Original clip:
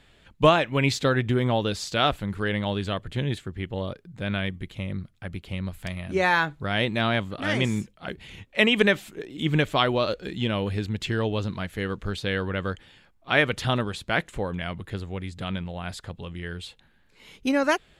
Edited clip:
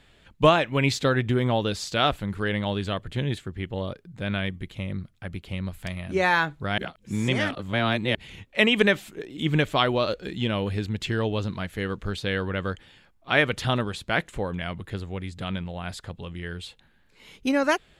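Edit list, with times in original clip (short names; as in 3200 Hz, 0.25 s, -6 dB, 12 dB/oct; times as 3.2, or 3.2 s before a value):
6.78–8.15 reverse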